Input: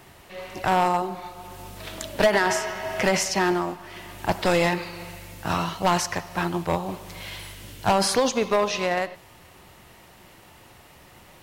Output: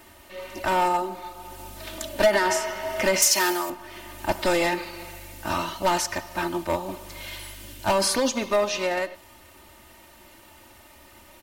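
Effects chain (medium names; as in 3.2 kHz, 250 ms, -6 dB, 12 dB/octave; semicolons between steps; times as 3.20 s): treble shelf 8.9 kHz +6 dB; comb 3.3 ms, depth 76%; 3.22–3.70 s: RIAA curve recording; overload inside the chain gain 9.5 dB; trim -3 dB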